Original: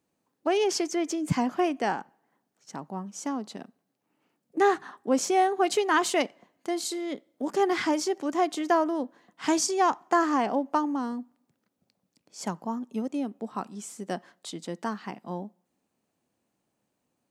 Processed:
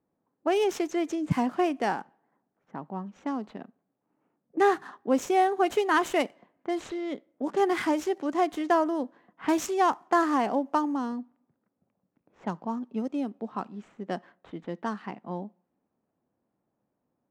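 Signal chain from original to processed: median filter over 9 samples; low-pass opened by the level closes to 1400 Hz, open at -24 dBFS

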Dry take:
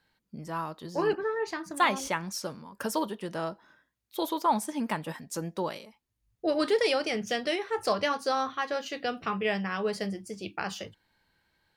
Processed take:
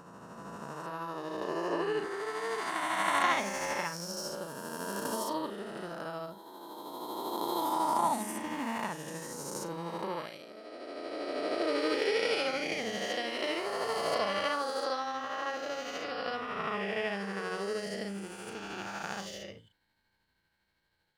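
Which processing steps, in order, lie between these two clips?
spectral swells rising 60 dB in 1.98 s; granular stretch 1.8×, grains 0.158 s; gain -7.5 dB

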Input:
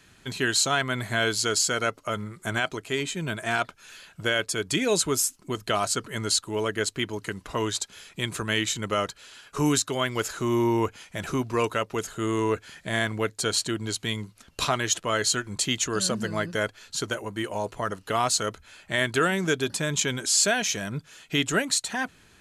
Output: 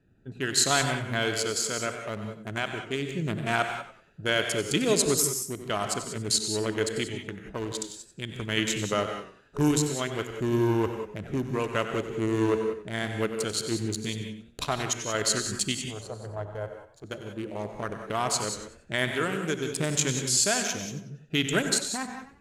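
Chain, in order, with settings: Wiener smoothing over 41 samples; 15.81–17.04 EQ curve 110 Hz 0 dB, 180 Hz -21 dB, 770 Hz +1 dB, 2100 Hz -18 dB; random-step tremolo; high shelf 9900 Hz +4.5 dB; non-linear reverb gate 0.21 s rising, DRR 6.5 dB; warbling echo 94 ms, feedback 30%, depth 106 cents, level -12 dB; gain +1.5 dB

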